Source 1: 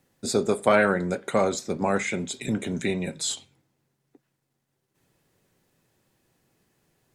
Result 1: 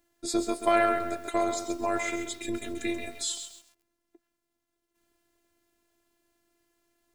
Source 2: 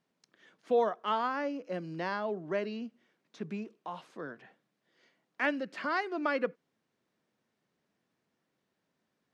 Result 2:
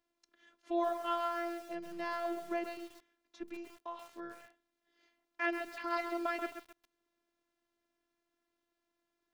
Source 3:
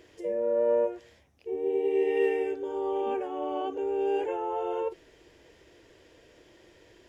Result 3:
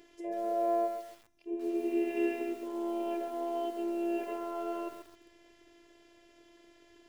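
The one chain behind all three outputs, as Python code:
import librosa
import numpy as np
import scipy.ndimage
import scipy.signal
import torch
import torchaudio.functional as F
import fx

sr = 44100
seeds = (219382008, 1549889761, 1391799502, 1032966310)

y = fx.robotise(x, sr, hz=342.0)
y = fx.echo_crushed(y, sr, ms=133, feedback_pct=35, bits=8, wet_db=-8)
y = F.gain(torch.from_numpy(y), -1.5).numpy()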